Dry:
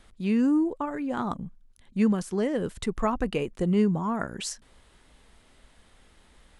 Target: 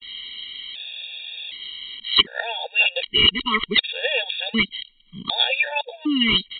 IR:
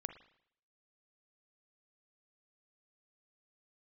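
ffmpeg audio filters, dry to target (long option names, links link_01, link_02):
-filter_complex "[0:a]areverse,aexciter=amount=13:drive=10:freq=2400,adynamicequalizer=threshold=0.0398:dfrequency=2300:dqfactor=0.74:tfrequency=2300:tqfactor=0.74:attack=5:release=100:ratio=0.375:range=2:mode=boostabove:tftype=bell,asplit=2[link_01][link_02];[link_02]acompressor=threshold=-21dB:ratio=6,volume=-1dB[link_03];[link_01][link_03]amix=inputs=2:normalize=0,aemphasis=mode=production:type=bsi,aresample=8000,volume=6.5dB,asoftclip=hard,volume=-6.5dB,aresample=44100,afftfilt=real='re*gt(sin(2*PI*0.66*pts/sr)*(1-2*mod(floor(b*sr/1024/470),2)),0)':imag='im*gt(sin(2*PI*0.66*pts/sr)*(1-2*mod(floor(b*sr/1024/470),2)),0)':win_size=1024:overlap=0.75,volume=1dB"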